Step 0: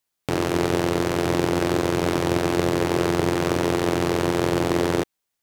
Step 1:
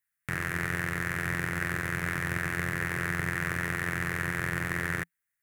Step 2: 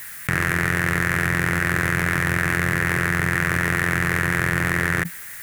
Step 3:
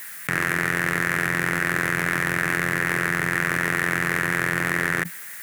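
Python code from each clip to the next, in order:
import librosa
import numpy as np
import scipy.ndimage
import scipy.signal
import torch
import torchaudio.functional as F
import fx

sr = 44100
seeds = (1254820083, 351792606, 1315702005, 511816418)

y1 = fx.curve_eq(x, sr, hz=(170.0, 290.0, 460.0, 870.0, 1800.0, 3100.0, 4600.0, 10000.0), db=(0, -13, -13, -11, 13, -7, -10, 3))
y1 = F.gain(torch.from_numpy(y1), -6.5).numpy()
y2 = fx.env_flatten(y1, sr, amount_pct=100)
y2 = F.gain(torch.from_numpy(y2), 7.5).numpy()
y3 = scipy.signal.sosfilt(scipy.signal.butter(2, 180.0, 'highpass', fs=sr, output='sos'), y2)
y3 = F.gain(torch.from_numpy(y3), -1.0).numpy()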